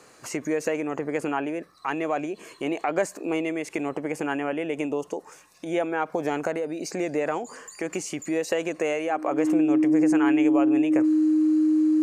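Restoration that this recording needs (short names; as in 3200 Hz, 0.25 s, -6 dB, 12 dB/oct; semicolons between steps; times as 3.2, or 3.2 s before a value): notch 310 Hz, Q 30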